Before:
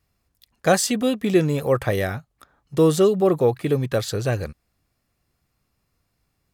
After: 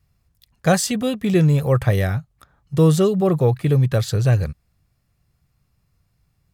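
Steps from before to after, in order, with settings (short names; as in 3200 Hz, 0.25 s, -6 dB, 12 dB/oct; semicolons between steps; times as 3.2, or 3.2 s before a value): resonant low shelf 200 Hz +7.5 dB, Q 1.5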